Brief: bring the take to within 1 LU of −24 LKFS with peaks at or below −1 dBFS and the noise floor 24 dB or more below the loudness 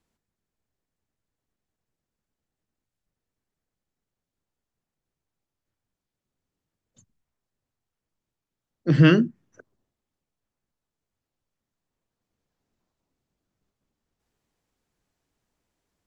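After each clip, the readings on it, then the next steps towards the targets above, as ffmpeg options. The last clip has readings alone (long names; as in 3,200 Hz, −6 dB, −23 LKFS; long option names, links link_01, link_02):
integrated loudness −20.0 LKFS; sample peak −5.5 dBFS; target loudness −24.0 LKFS
→ -af "volume=-4dB"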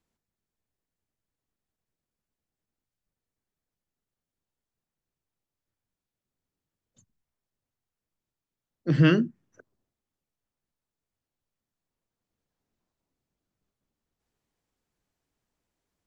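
integrated loudness −24.0 LKFS; sample peak −9.5 dBFS; background noise floor −90 dBFS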